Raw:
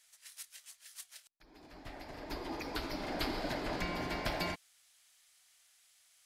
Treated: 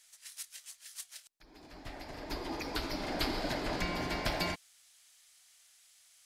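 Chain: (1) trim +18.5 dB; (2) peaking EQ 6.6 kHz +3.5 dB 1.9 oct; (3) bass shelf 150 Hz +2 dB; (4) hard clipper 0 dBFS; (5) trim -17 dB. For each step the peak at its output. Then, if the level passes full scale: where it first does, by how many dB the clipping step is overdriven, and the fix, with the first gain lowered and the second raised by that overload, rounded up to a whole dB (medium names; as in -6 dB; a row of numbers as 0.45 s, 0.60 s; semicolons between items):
-3.5 dBFS, -3.0 dBFS, -2.5 dBFS, -2.5 dBFS, -19.5 dBFS; nothing clips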